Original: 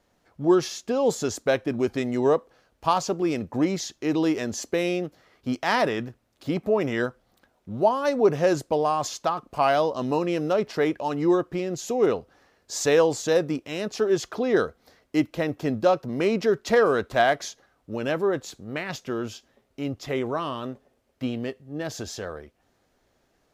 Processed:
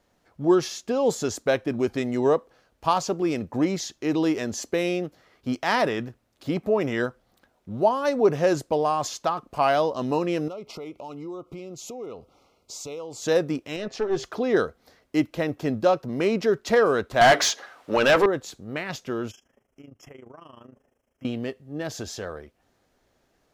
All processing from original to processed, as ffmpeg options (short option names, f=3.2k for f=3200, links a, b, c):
-filter_complex "[0:a]asettb=1/sr,asplit=3[a][b][c];[a]atrim=end=10.484[d];[b]atrim=start=10.48:end=13.22,asetpts=PTS-STARTPTS,afade=t=in:d=0.004:c=qsin,afade=t=out:st=2.736:d=0.004:c=qsin,acompressor=threshold=-36dB:ratio=4:attack=3.2:release=140:knee=1:detection=peak,asuperstop=centerf=1700:order=12:qfactor=2.6[e];[c]atrim=start=13.216[f];[d][e]acrossfade=d=0.004:c1=hsin:c2=qsin[g];[g][f]acrossfade=d=0.004:c1=qsin:c2=hsin,asettb=1/sr,asplit=3[h][i][j];[h]atrim=end=13.764[k];[i]atrim=start=13.76:end=14.24,asetpts=PTS-STARTPTS,afade=t=in:d=0.004:c=qsin,afade=t=out:st=0.476:d=0.004:c=qsin,lowpass=5.9k,bandreject=f=132.1:t=h:w=4,bandreject=f=264.2:t=h:w=4,bandreject=f=396.3:t=h:w=4,bandreject=f=528.4:t=h:w=4,bandreject=f=660.5:t=h:w=4,bandreject=f=792.6:t=h:w=4,bandreject=f=924.7:t=h:w=4,bandreject=f=1.0568k:t=h:w=4,bandreject=f=1.1889k:t=h:w=4,bandreject=f=1.321k:t=h:w=4,bandreject=f=1.4531k:t=h:w=4,bandreject=f=1.5852k:t=h:w=4,bandreject=f=1.7173k:t=h:w=4,bandreject=f=1.8494k:t=h:w=4,bandreject=f=1.9815k:t=h:w=4,bandreject=f=2.1136k:t=h:w=4,bandreject=f=2.2457k:t=h:w=4,bandreject=f=2.3778k:t=h:w=4,bandreject=f=2.5099k:t=h:w=4,bandreject=f=2.642k:t=h:w=4,aeval=exprs='(tanh(7.08*val(0)+0.4)-tanh(0.4))/7.08':c=same[l];[j]atrim=start=14.236[m];[k][l]acrossfade=d=0.004:c1=hsin:c2=qsin[n];[n][m]acrossfade=d=0.004:c1=qsin:c2=hsin,asettb=1/sr,asplit=3[o][p][q];[o]atrim=end=17.214[r];[p]atrim=start=17.21:end=18.26,asetpts=PTS-STARTPTS,afade=t=in:d=0.004:c=qsin,afade=t=out:st=1.046:d=0.004:c=qsin,lowshelf=f=330:g=-9,bandreject=f=60:t=h:w=6,bandreject=f=120:t=h:w=6,bandreject=f=180:t=h:w=6,bandreject=f=240:t=h:w=6,bandreject=f=300:t=h:w=6,bandreject=f=360:t=h:w=6,bandreject=f=420:t=h:w=6,bandreject=f=480:t=h:w=6,asplit=2[s][t];[t]highpass=f=720:p=1,volume=27dB,asoftclip=type=tanh:threshold=-7.5dB[u];[s][u]amix=inputs=2:normalize=0,lowpass=f=3.7k:p=1,volume=-6dB[v];[q]atrim=start=18.256[w];[r][v]acrossfade=d=0.004:c1=hsin:c2=qsin[x];[x][w]acrossfade=d=0.004:c1=qsin:c2=hsin,asettb=1/sr,asplit=3[y][z][aa];[y]atrim=end=19.314[ab];[z]atrim=start=19.31:end=21.25,asetpts=PTS-STARTPTS,afade=t=in:d=0.004:c=qsin,afade=t=out:st=1.936:d=0.004:c=qsin,tremolo=f=26:d=0.824,acompressor=threshold=-45dB:ratio=4:attack=3.2:release=140:knee=1:detection=peak,asuperstop=centerf=4100:order=20:qfactor=2.4[ac];[aa]atrim=start=21.246[ad];[ab][ac]acrossfade=d=0.004:c1=hsin:c2=qsin[ae];[ae][ad]acrossfade=d=0.004:c1=qsin:c2=hsin"